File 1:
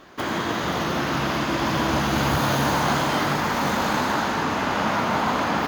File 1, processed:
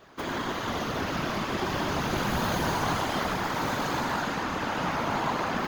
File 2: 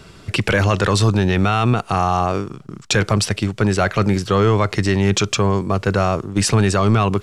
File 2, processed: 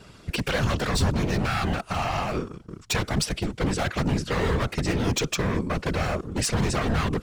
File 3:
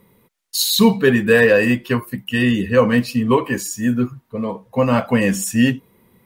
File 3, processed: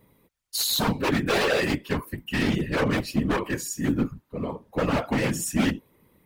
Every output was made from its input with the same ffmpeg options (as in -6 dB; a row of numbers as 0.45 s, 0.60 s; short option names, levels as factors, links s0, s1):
-af "aeval=exprs='0.251*(abs(mod(val(0)/0.251+3,4)-2)-1)':c=same,afftfilt=real='hypot(re,im)*cos(2*PI*random(0))':imag='hypot(re,im)*sin(2*PI*random(1))':win_size=512:overlap=0.75"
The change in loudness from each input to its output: -6.0 LU, -8.5 LU, -8.5 LU